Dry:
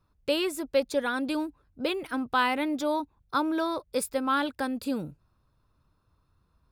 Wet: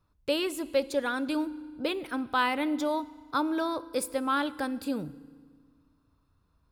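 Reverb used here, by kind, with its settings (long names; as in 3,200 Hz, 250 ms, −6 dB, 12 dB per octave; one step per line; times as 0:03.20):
feedback delay network reverb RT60 1.7 s, low-frequency decay 1.25×, high-frequency decay 0.9×, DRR 16.5 dB
level −1.5 dB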